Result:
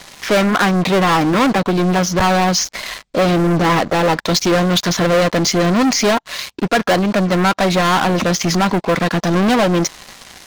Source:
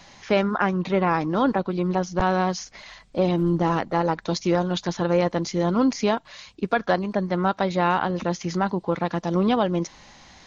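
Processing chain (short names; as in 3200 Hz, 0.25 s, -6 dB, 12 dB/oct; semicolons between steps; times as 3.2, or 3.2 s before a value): sample leveller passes 5; low shelf 370 Hz -4.5 dB; notch 870 Hz, Q 12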